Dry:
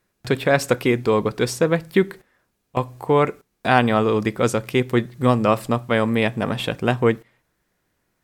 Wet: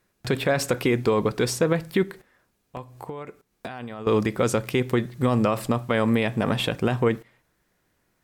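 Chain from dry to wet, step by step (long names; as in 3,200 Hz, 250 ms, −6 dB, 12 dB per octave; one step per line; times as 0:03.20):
de-essing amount 45%
brickwall limiter −12.5 dBFS, peak gain reduction 10.5 dB
0:02.03–0:04.07: downward compressor 6 to 1, threshold −35 dBFS, peak gain reduction 16 dB
level +1 dB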